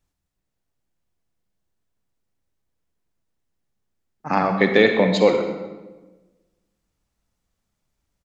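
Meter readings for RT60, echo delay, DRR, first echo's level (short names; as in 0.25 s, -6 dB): 1.2 s, 0.128 s, 5.0 dB, -15.0 dB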